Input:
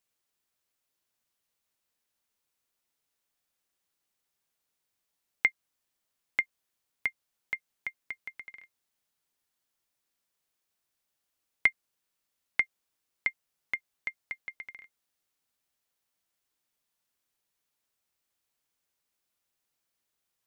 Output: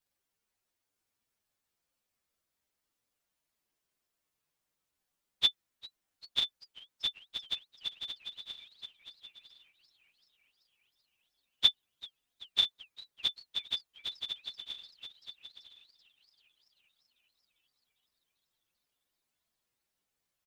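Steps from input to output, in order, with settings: frequency axis rescaled in octaves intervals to 124%; delay 976 ms -8.5 dB; modulated delay 392 ms, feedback 70%, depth 213 cents, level -22.5 dB; trim +5.5 dB

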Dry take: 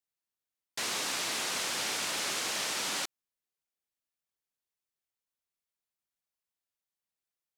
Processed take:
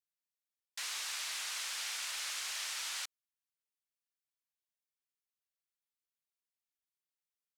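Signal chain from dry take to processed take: high-pass 1.3 kHz 12 dB/octave; trim -5.5 dB

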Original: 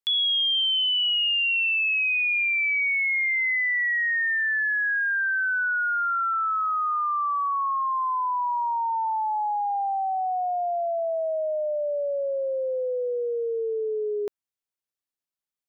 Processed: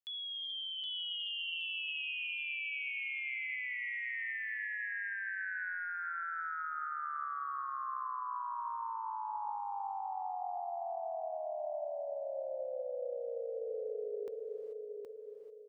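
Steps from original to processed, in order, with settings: 10.43–10.96 s: peaking EQ 1.4 kHz +12 dB 2.5 oct; peak limiter -31 dBFS, peak gain reduction 15.5 dB; feedback delay 770 ms, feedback 37%, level -4 dB; gated-style reverb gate 460 ms rising, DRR 7.5 dB; trim -7.5 dB

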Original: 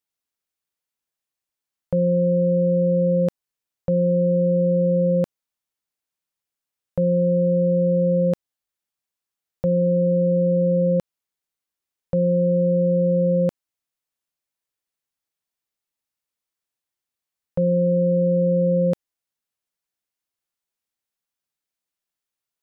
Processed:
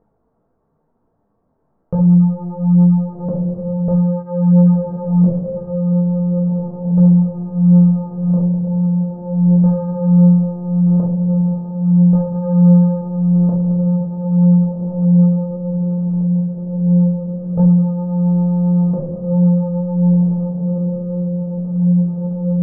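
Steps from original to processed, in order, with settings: on a send: echo that smears into a reverb 1562 ms, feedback 62%, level -5 dB; on the sum: simulated room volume 2100 m³, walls furnished, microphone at 1.6 m; waveshaping leveller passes 3; upward compressor, threshold -17 dBFS; Bessel low-pass 620 Hz, order 6; peaking EQ 150 Hz +2.5 dB; detune thickener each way 14 cents; trim +2 dB

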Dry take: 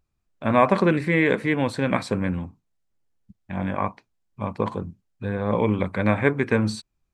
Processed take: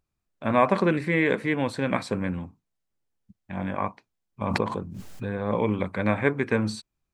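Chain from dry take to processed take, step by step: bass shelf 87 Hz -5.5 dB; 4.41–5.29 s: swell ahead of each attack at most 24 dB/s; trim -2.5 dB

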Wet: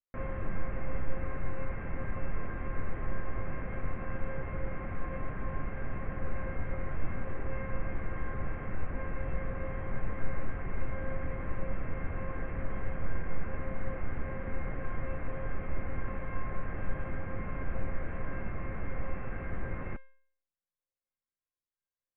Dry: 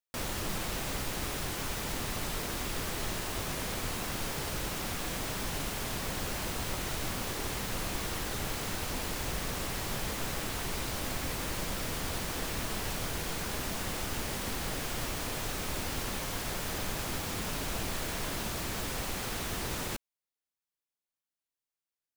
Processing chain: steep low-pass 2.2 kHz 48 dB/octave; bass shelf 200 Hz +10 dB; band-stop 920 Hz, Q 12; feedback comb 530 Hz, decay 0.58 s, mix 90%; trim +12.5 dB

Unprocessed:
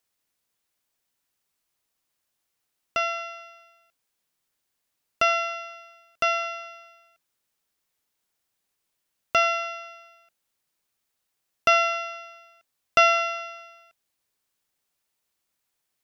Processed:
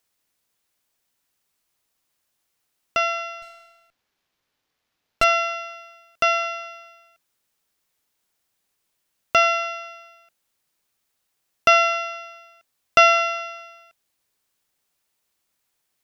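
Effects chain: 3.42–5.24 s: sliding maximum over 5 samples; trim +4 dB

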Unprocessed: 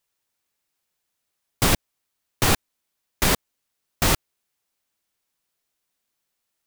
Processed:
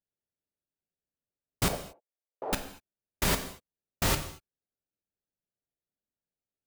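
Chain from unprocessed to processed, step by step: local Wiener filter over 41 samples; 1.68–2.53 s: Butterworth band-pass 600 Hz, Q 1.5; gated-style reverb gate 260 ms falling, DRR 6.5 dB; trim -7 dB

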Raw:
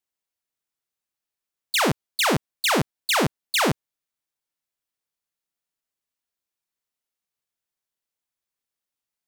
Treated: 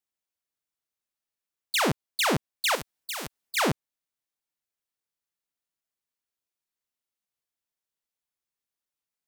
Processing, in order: 2.75–3.57 s: spectrum-flattening compressor 2:1; trim -3.5 dB

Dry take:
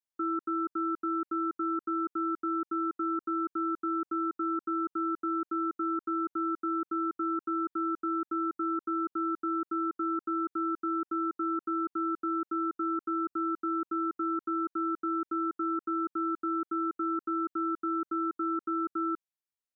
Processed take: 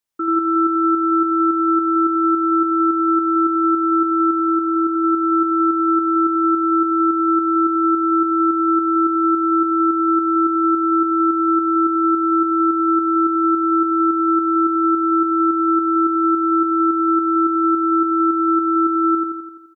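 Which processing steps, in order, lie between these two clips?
4.33–4.92 s: low-pass 1.2 kHz 6 dB/octave; on a send: feedback delay 85 ms, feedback 58%, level -3 dB; on the sum: trim +9 dB

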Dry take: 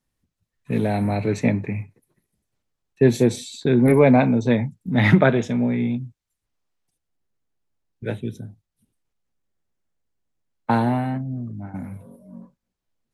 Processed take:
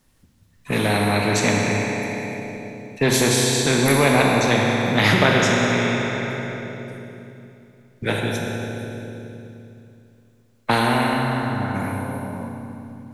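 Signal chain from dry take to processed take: on a send at -1 dB: reverberation RT60 2.7 s, pre-delay 14 ms; on the sum: spectrum-flattening compressor 2:1

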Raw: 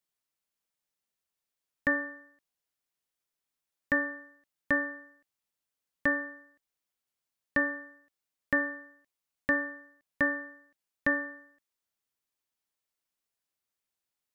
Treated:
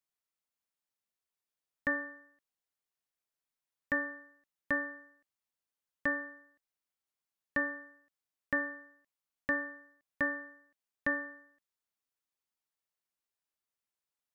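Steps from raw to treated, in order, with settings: peaking EQ 1.1 kHz +2.5 dB 1.7 oct; trim -6 dB

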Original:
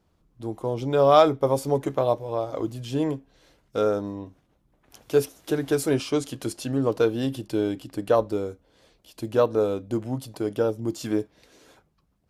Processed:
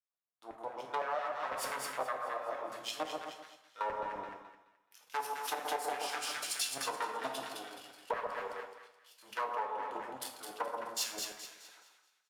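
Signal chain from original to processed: partial rectifier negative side -7 dB; in parallel at -0.5 dB: peak limiter -15.5 dBFS, peak gain reduction 11 dB; on the sum: doubling 23 ms -9 dB; level held to a coarse grid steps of 18 dB; bass shelf 230 Hz +10 dB; saturation -22 dBFS, distortion -3 dB; LFO high-pass saw down 5.9 Hz 640–2000 Hz; on a send: two-band feedback delay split 1.3 kHz, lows 129 ms, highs 213 ms, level -4 dB; on the sum: two-slope reverb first 0.54 s, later 1.9 s, DRR 3.5 dB; compression 12:1, threshold -33 dBFS, peak gain reduction 13.5 dB; three bands expanded up and down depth 70%

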